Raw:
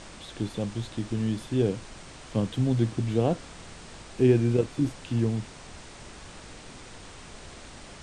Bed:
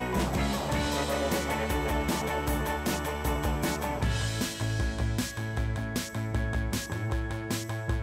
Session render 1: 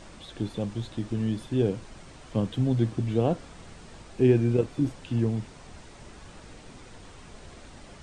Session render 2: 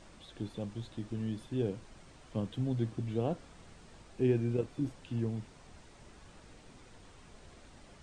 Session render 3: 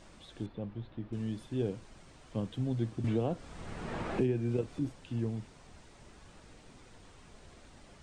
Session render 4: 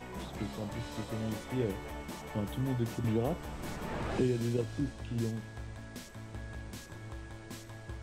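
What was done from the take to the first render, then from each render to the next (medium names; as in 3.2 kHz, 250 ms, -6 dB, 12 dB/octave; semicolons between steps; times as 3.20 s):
noise reduction 6 dB, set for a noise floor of -46 dBFS
trim -8.5 dB
0.46–1.13 s: distance through air 380 m; 3.04–4.79 s: three bands compressed up and down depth 100%
add bed -14 dB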